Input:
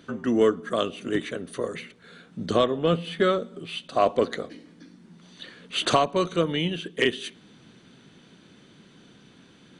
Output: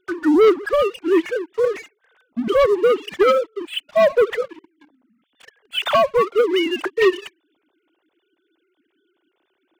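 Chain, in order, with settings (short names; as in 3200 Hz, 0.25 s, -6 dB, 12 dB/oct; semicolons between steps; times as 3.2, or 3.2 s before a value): sine-wave speech; sample leveller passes 3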